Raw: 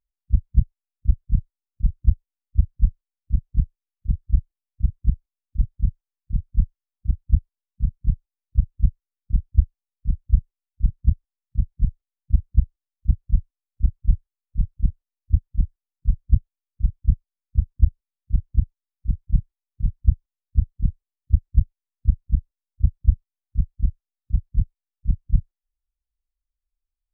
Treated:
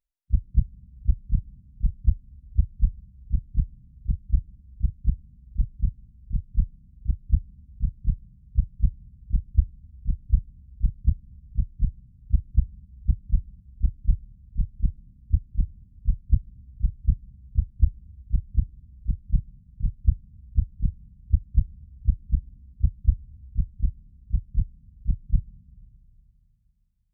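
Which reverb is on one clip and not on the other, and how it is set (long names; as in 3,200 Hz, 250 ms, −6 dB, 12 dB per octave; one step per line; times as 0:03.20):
comb and all-pass reverb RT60 3.1 s, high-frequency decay 0.95×, pre-delay 40 ms, DRR 19.5 dB
level −3.5 dB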